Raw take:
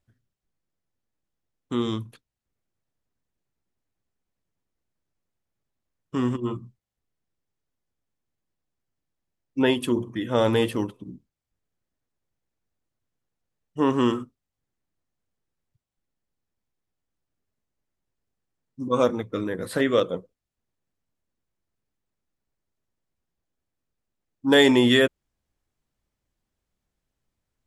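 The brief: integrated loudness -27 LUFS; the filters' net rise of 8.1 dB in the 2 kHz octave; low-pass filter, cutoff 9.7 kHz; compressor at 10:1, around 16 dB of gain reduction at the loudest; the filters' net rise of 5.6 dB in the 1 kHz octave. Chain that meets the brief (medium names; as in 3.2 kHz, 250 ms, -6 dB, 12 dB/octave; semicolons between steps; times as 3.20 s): low-pass 9.7 kHz; peaking EQ 1 kHz +4.5 dB; peaking EQ 2 kHz +8 dB; compression 10:1, threshold -25 dBFS; trim +4.5 dB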